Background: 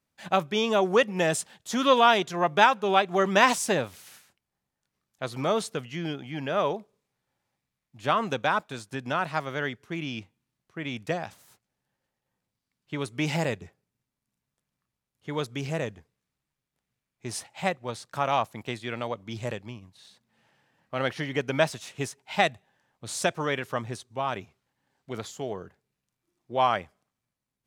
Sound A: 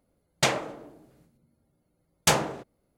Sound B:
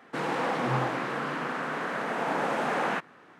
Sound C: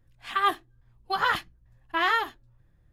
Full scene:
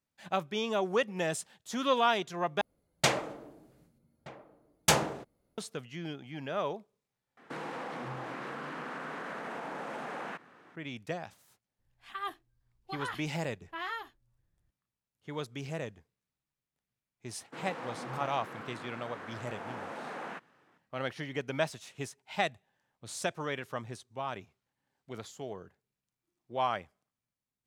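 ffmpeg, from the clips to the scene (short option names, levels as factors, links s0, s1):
-filter_complex "[2:a]asplit=2[s0][s1];[0:a]volume=0.422[s2];[1:a]asplit=2[s3][s4];[s4]adelay=1224,volume=0.126,highshelf=f=4000:g=-27.6[s5];[s3][s5]amix=inputs=2:normalize=0[s6];[s0]acompressor=threshold=0.0251:ratio=6:attack=3.2:release=140:knee=1:detection=peak[s7];[s2]asplit=3[s8][s9][s10];[s8]atrim=end=2.614[s11];[s6]atrim=end=2.97,asetpts=PTS-STARTPTS,volume=0.708[s12];[s9]atrim=start=5.576:end=7.374[s13];[s7]atrim=end=3.39,asetpts=PTS-STARTPTS,volume=0.631[s14];[s10]atrim=start=10.756[s15];[3:a]atrim=end=2.92,asetpts=PTS-STARTPTS,volume=0.2,afade=t=in:d=0.004:c=hsin,afade=t=out:st=2.916:d=0.004:c=hsin,adelay=11790[s16];[s1]atrim=end=3.39,asetpts=PTS-STARTPTS,volume=0.224,afade=t=in:d=0.004:c=hsin,afade=t=out:st=3.386:d=0.004:c=hsin,adelay=17390[s17];[s11][s12]acrossfade=d=0.004:c1=hsin:c2=hsin[s18];[s18][s13]acrossfade=d=0.004:c1=hsin:c2=hsin[s19];[s19][s14]acrossfade=d=0.004:c1=hsin:c2=hsin[s20];[s20][s15]acrossfade=d=0.004:c1=hsin:c2=hsin[s21];[s21][s16][s17]amix=inputs=3:normalize=0"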